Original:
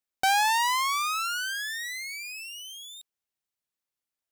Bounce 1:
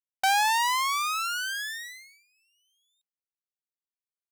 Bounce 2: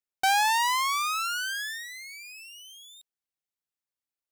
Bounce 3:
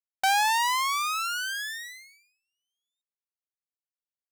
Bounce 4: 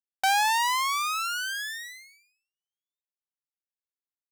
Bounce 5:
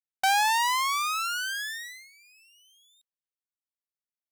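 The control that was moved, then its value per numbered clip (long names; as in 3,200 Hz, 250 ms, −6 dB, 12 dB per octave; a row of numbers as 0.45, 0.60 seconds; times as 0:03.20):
noise gate, range: −31, −6, −45, −58, −19 decibels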